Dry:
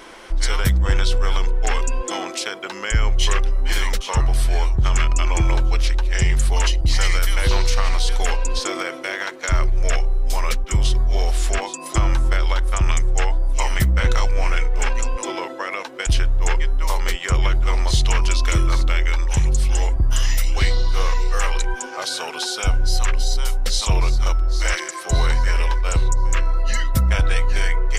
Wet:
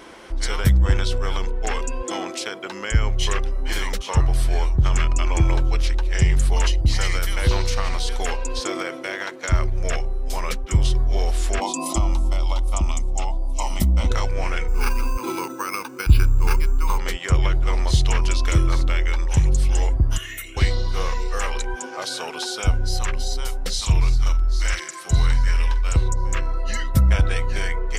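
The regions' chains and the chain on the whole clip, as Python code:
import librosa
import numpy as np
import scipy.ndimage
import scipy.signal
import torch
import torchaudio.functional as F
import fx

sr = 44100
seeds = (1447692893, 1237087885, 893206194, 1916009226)

y = fx.chain(x, sr, fx.fixed_phaser(hz=440.0, stages=6),
    fx.env_flatten(amount_pct=50), at=(11.61, 14.11))
y = fx.chain(y, sr, fx.comb(ms=0.8, depth=0.81),
    fx.resample_bad(factor=6, down='filtered', up='hold'), at=(14.68, 16.98))
y = fx.chain(y, sr, fx.highpass(hz=550.0, slope=6),
    fx.fixed_phaser(hz=2100.0, stages=4),
    fx.comb(ms=2.8, depth=0.66), at=(20.17, 20.57))
y = fx.chain(y, sr, fx.peak_eq(hz=530.0, db=-9.0, octaves=1.6),
    fx.doubler(ms=47.0, db=-13.5), at=(23.73, 25.95))
y = scipy.signal.sosfilt(scipy.signal.butter(2, 49.0, 'highpass', fs=sr, output='sos'), y)
y = fx.low_shelf(y, sr, hz=440.0, db=6.5)
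y = F.gain(torch.from_numpy(y), -3.5).numpy()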